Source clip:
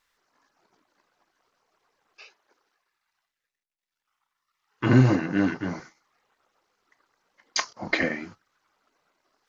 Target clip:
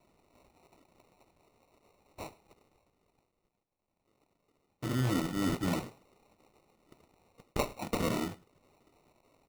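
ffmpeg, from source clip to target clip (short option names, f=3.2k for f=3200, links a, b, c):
-af "areverse,acompressor=threshold=-33dB:ratio=10,areverse,acrusher=samples=27:mix=1:aa=0.000001,aecho=1:1:107:0.075,volume=5dB"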